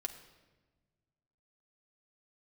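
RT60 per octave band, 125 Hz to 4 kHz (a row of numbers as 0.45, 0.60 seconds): 2.2, 1.9, 1.4, 1.1, 1.1, 0.95 seconds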